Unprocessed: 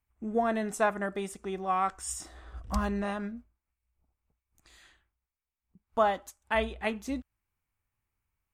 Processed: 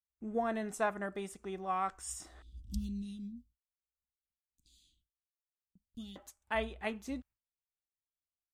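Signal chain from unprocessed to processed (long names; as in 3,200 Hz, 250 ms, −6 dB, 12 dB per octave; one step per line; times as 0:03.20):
0:02.42–0:06.16: elliptic band-stop filter 270–3,400 Hz, stop band 40 dB
noise gate with hold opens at −60 dBFS
level −6 dB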